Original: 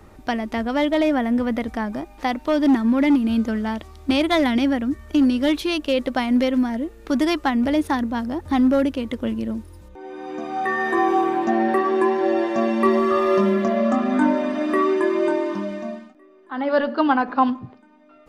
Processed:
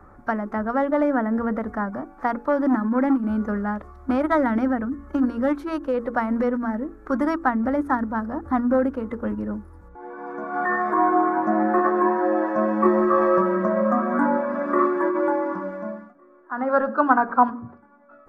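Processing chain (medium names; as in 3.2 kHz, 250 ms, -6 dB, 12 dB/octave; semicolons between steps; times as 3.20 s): resonant high shelf 2.1 kHz -14 dB, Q 3; hum notches 50/100/150/200/250/300/350/400/450/500 Hz; formant-preserving pitch shift -1 st; trim -2 dB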